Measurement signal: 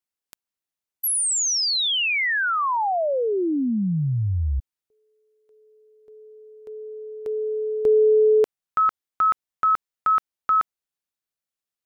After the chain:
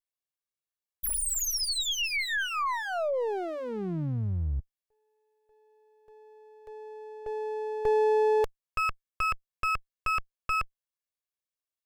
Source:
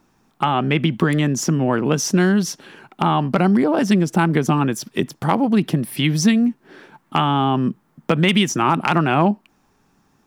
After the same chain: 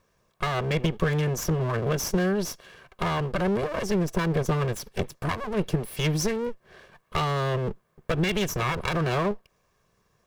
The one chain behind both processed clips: comb filter that takes the minimum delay 1.8 ms; trim -5.5 dB

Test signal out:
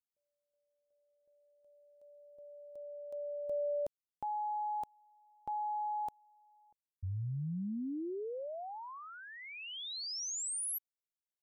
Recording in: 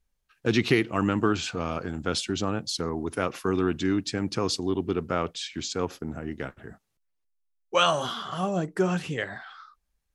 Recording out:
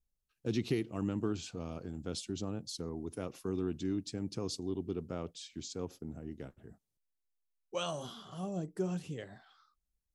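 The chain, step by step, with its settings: peaking EQ 1.6 kHz -13.5 dB 2.2 oct; trim -8 dB

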